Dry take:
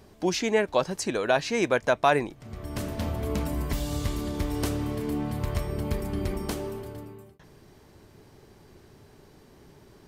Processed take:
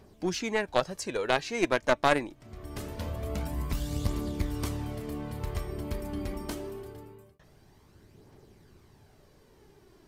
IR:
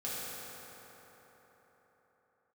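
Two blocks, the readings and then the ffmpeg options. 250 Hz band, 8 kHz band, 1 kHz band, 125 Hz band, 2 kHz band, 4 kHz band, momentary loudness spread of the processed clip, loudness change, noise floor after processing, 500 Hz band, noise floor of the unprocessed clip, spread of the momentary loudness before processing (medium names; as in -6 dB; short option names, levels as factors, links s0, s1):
-4.5 dB, -4.5 dB, -3.0 dB, -3.5 dB, -2.0 dB, -2.5 dB, 15 LU, -3.5 dB, -59 dBFS, -4.0 dB, -55 dBFS, 12 LU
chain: -af "aphaser=in_gain=1:out_gain=1:delay=3.7:decay=0.38:speed=0.24:type=triangular,aeval=exprs='0.376*(cos(1*acos(clip(val(0)/0.376,-1,1)))-cos(1*PI/2))+0.0531*(cos(3*acos(clip(val(0)/0.376,-1,1)))-cos(3*PI/2))+0.075*(cos(4*acos(clip(val(0)/0.376,-1,1)))-cos(4*PI/2))+0.0335*(cos(6*acos(clip(val(0)/0.376,-1,1)))-cos(6*PI/2))':c=same,volume=0.891"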